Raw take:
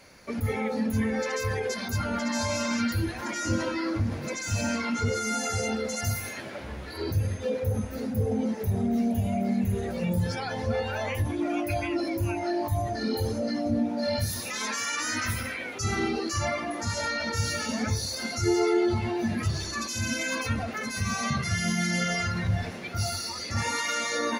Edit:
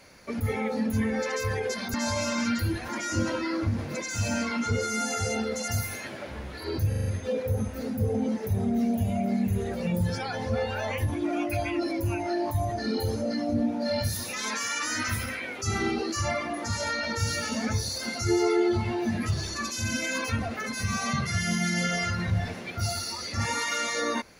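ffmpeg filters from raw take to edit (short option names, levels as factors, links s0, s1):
-filter_complex "[0:a]asplit=6[s0][s1][s2][s3][s4][s5];[s0]atrim=end=1.942[s6];[s1]atrim=start=2.268:end=7.262[s7];[s2]atrim=start=7.218:end=7.262[s8];[s3]atrim=start=7.218:end=7.262[s9];[s4]atrim=start=7.218:end=7.262[s10];[s5]atrim=start=7.218[s11];[s6][s7]acrossfade=d=0.004:c1=hsin:c2=hsin[s12];[s12][s8]acrossfade=d=0.004:c1=hsin:c2=hsin[s13];[s13][s9]acrossfade=d=0.004:c1=hsin:c2=hsin[s14];[s14][s10]acrossfade=d=0.004:c1=hsin:c2=hsin[s15];[s15][s11]acrossfade=d=0.004:c1=hsin:c2=hsin"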